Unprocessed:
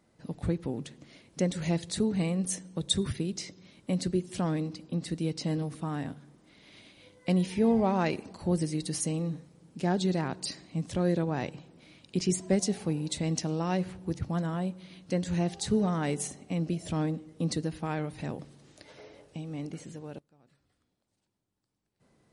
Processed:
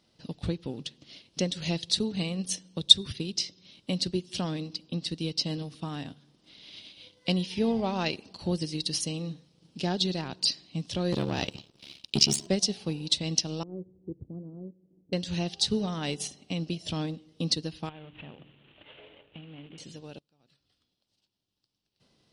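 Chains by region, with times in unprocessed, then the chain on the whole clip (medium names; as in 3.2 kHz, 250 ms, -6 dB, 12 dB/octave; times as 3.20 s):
11.12–12.47 s: treble shelf 9.2 kHz +11 dB + waveshaping leveller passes 2 + ring modulator 35 Hz
13.63–15.13 s: four-pole ladder low-pass 470 Hz, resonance 50% + de-hum 58.41 Hz, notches 2
17.89–19.78 s: CVSD coder 16 kbps + hum notches 60/120/180/240/300/360 Hz + compression 2:1, threshold -45 dBFS
whole clip: high-order bell 3.9 kHz +13 dB 1.3 oct; transient shaper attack +3 dB, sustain -5 dB; trim -3 dB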